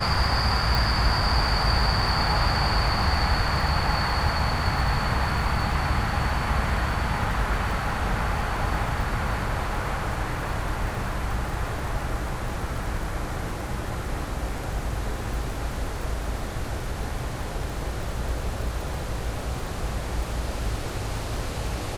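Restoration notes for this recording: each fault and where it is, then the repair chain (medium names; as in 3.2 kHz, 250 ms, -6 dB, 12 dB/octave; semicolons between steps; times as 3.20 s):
crackle 52 per s -33 dBFS
0.75 s: pop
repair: de-click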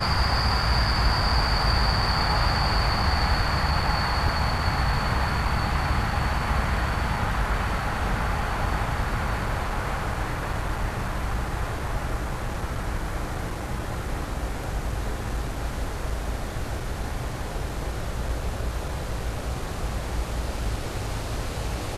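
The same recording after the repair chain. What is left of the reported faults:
0.75 s: pop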